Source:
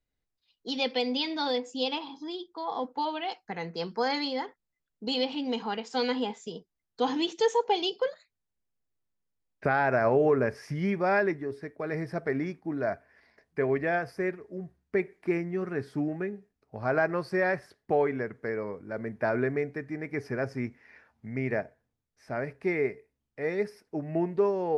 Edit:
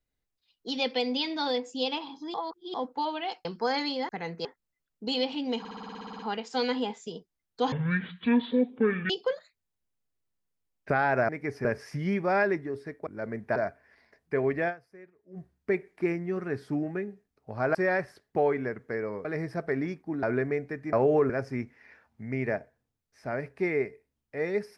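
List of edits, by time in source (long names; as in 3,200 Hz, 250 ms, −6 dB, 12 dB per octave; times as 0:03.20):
0:02.34–0:02.74: reverse
0:03.45–0:03.81: move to 0:04.45
0:05.59: stutter 0.06 s, 11 plays
0:07.12–0:07.85: play speed 53%
0:10.04–0:10.41: swap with 0:19.98–0:20.34
0:11.83–0:12.81: swap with 0:18.79–0:19.28
0:13.93–0:14.63: duck −20 dB, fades 0.35 s exponential
0:17.00–0:17.29: remove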